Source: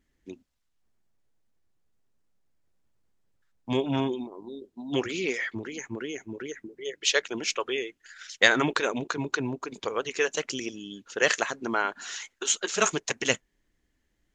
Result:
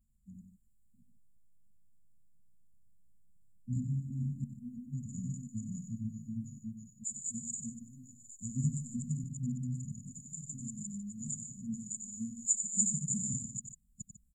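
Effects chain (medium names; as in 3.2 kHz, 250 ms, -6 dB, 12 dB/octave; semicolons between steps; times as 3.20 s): chunks repeated in reverse 342 ms, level 0 dB; 7.81–8.96 s: comb 7.5 ms, depth 84%; vibrato 0.32 Hz 13 cents; brick-wall FIR band-stop 240–6800 Hz; on a send: loudspeakers at several distances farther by 32 m -8 dB, 51 m -12 dB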